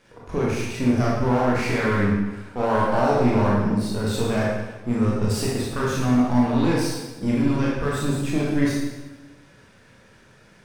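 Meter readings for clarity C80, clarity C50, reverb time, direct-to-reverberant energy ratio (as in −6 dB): 2.5 dB, −0.5 dB, 1.1 s, −5.5 dB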